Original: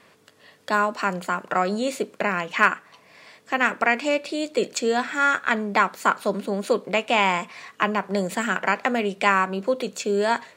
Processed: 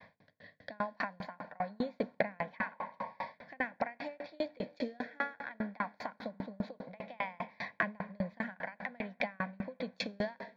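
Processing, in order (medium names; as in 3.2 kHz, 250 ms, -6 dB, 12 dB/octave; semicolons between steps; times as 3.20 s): peak limiter -10 dBFS, peak gain reduction 6.5 dB; rotary cabinet horn 0.65 Hz; expander -54 dBFS; distance through air 300 m; static phaser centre 1.9 kHz, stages 8; compression 16:1, threshold -44 dBFS, peak gain reduction 21 dB; on a send at -11 dB: reverberation RT60 5.0 s, pre-delay 52 ms; on the sum: spectral replace 2.60–3.32 s, 370–1100 Hz before; sawtooth tremolo in dB decaying 5 Hz, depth 35 dB; trim +18 dB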